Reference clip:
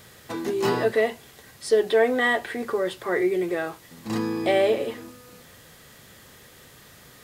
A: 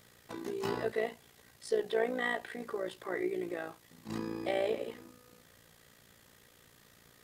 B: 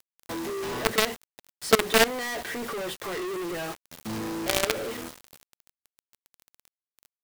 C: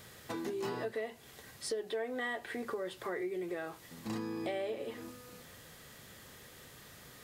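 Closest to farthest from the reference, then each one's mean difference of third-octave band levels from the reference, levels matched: A, C, B; 1.0, 6.0, 9.5 dB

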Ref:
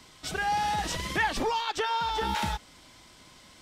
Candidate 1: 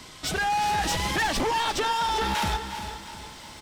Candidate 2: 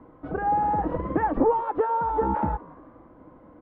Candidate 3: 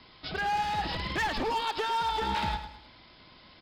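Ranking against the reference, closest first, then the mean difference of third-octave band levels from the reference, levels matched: 3, 1, 2; 4.0, 5.5, 12.0 dB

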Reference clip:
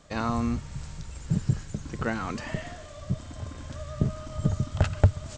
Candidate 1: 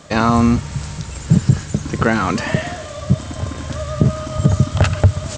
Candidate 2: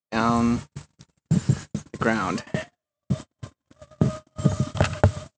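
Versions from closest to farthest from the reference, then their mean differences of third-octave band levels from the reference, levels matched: 1, 2; 2.0, 8.0 dB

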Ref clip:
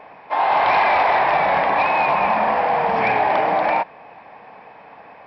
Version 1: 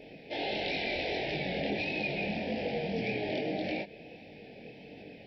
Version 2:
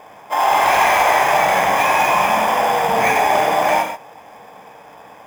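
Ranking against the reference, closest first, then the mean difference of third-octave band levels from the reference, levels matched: 2, 1; 6.5, 10.0 dB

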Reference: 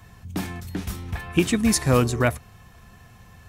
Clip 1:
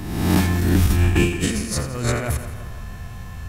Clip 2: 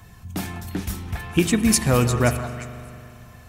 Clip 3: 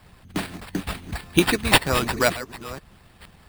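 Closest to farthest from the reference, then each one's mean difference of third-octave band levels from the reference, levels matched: 2, 3, 1; 4.0, 6.0, 9.5 dB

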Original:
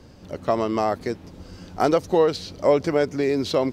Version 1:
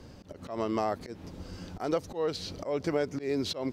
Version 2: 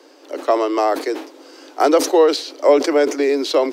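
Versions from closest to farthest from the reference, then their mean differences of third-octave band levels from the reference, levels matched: 1, 2; 5.0, 7.0 dB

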